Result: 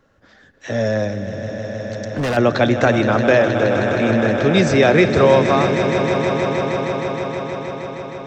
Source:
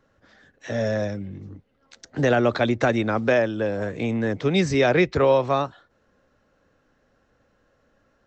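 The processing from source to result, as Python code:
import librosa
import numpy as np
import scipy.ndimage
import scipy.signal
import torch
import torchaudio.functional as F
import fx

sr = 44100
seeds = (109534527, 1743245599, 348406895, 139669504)

y = fx.echo_swell(x, sr, ms=157, loudest=5, wet_db=-11.5)
y = fx.overload_stage(y, sr, gain_db=23.0, at=(1.25, 2.37))
y = y * librosa.db_to_amplitude(5.0)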